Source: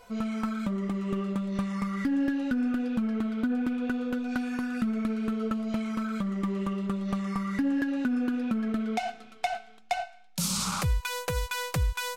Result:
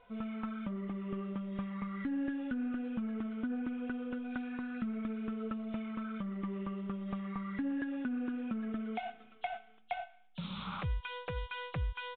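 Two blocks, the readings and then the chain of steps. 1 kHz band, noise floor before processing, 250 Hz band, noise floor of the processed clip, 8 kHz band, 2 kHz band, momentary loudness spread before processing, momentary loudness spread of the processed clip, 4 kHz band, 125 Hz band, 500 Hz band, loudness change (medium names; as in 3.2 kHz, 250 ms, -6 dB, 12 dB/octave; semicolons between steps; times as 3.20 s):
-8.5 dB, -51 dBFS, -8.5 dB, -59 dBFS, under -40 dB, -8.5 dB, 5 LU, 6 LU, -12.0 dB, -8.5 dB, -8.5 dB, -9.0 dB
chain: knee-point frequency compression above 2.7 kHz 1.5:1; resampled via 8 kHz; trim -8.5 dB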